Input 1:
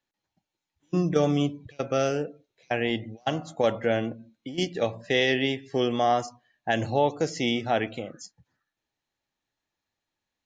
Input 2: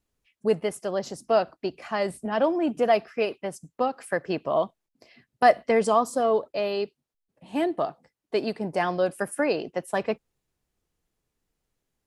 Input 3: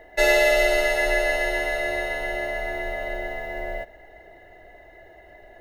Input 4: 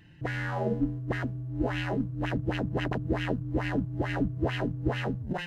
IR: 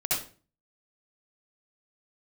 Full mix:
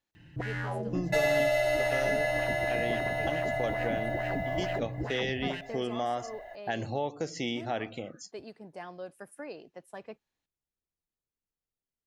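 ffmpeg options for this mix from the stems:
-filter_complex "[0:a]volume=-3dB[link_01];[1:a]volume=-17.5dB[link_02];[2:a]lowshelf=frequency=500:width_type=q:width=3:gain=-6.5,adelay=950,volume=-0.5dB[link_03];[3:a]alimiter=limit=-21.5dB:level=0:latency=1:release=192,adelay=150,volume=0.5dB[link_04];[link_01][link_02][link_03][link_04]amix=inputs=4:normalize=0,acompressor=threshold=-32dB:ratio=2"

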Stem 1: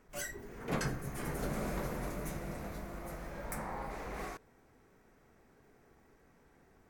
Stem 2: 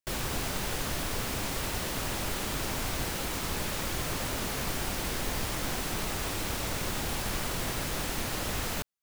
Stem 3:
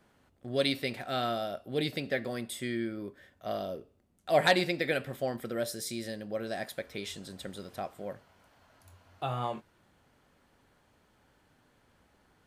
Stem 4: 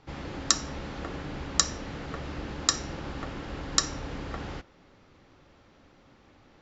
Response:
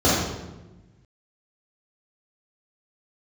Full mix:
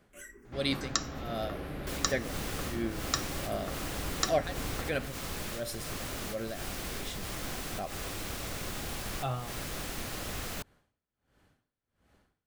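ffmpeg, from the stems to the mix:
-filter_complex "[0:a]asplit=2[link_01][link_02];[link_02]afreqshift=-0.54[link_03];[link_01][link_03]amix=inputs=2:normalize=1,volume=-6dB[link_04];[1:a]adelay=1800,volume=-5dB[link_05];[2:a]lowshelf=frequency=160:gain=5.5,aeval=exprs='val(0)*pow(10,-27*(0.5-0.5*cos(2*PI*1.4*n/s))/20)':channel_layout=same,volume=-0.5dB,asplit=2[link_06][link_07];[3:a]highshelf=frequency=4700:gain=-8.5,adelay=450,volume=-3dB[link_08];[link_07]apad=whole_len=477233[link_09];[link_05][link_09]sidechaincompress=threshold=-44dB:ratio=5:attack=21:release=106[link_10];[link_04][link_10][link_06][link_08]amix=inputs=4:normalize=0,bandreject=frequency=910:width=11"

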